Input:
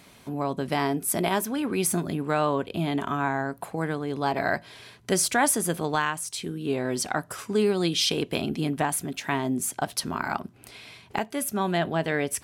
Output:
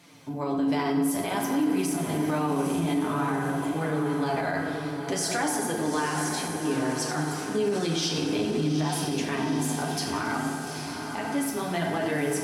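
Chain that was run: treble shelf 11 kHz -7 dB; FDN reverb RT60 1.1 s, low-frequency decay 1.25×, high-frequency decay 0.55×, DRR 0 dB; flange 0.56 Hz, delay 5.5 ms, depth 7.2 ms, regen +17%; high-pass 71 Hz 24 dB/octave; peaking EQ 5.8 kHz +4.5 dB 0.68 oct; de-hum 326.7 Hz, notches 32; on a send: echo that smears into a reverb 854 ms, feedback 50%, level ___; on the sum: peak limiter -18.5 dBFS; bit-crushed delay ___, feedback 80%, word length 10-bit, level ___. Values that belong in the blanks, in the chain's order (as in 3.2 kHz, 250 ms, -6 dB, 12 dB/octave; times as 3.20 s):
-8 dB, 91 ms, -14.5 dB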